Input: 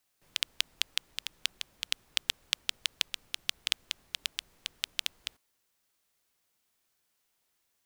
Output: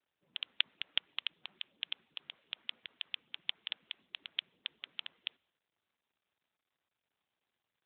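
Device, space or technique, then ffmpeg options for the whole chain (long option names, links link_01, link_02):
mobile call with aggressive noise cancelling: -af "highpass=frequency=150:width=0.5412,highpass=frequency=150:width=1.3066,afftdn=noise_reduction=18:noise_floor=-61,volume=2.5dB" -ar 8000 -c:a libopencore_amrnb -b:a 12200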